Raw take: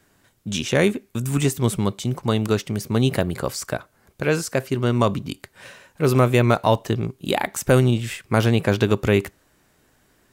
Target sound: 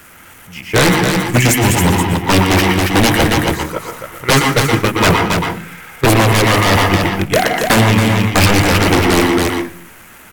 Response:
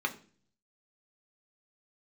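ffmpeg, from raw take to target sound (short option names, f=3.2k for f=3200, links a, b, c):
-filter_complex "[0:a]aeval=exprs='val(0)+0.5*0.0422*sgn(val(0))':c=same,bandreject=f=60:t=h:w=6,bandreject=f=120:t=h:w=6,bandreject=f=180:t=h:w=6,bandreject=f=240:t=h:w=6,bandreject=f=300:t=h:w=6,bandreject=f=360:t=h:w=6,bandreject=f=420:t=h:w=6,bandreject=f=480:t=h:w=6,bandreject=f=540:t=h:w=6,agate=range=-22dB:threshold=-19dB:ratio=16:detection=peak,highshelf=f=3.6k:t=q:w=1.5:g=-12,dynaudnorm=f=110:g=21:m=9.5dB,crystalizer=i=4.5:c=0,aeval=exprs='0.188*(abs(mod(val(0)/0.188+3,4)-2)-1)':c=same,asetrate=38170,aresample=44100,atempo=1.15535,aecho=1:1:276:0.531,asplit=2[a][b];[1:a]atrim=start_sample=2205,asetrate=37485,aresample=44100,adelay=118[c];[b][c]afir=irnorm=-1:irlink=0,volume=-10dB[d];[a][d]amix=inputs=2:normalize=0,alimiter=level_in=12dB:limit=-1dB:release=50:level=0:latency=1,volume=-2dB"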